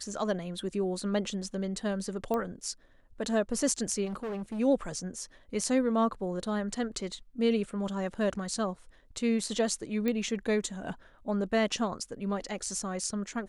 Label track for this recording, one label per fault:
2.340000	2.340000	pop -19 dBFS
4.050000	4.600000	clipped -32.5 dBFS
10.080000	10.080000	pop -18 dBFS

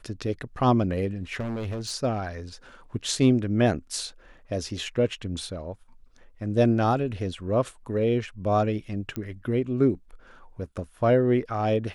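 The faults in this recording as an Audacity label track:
1.390000	1.920000	clipped -28 dBFS
9.160000	9.160000	pop -19 dBFS

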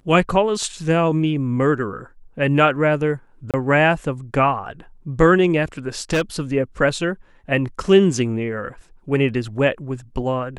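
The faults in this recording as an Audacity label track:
3.510000	3.540000	dropout 27 ms
6.100000	6.410000	clipped -15 dBFS

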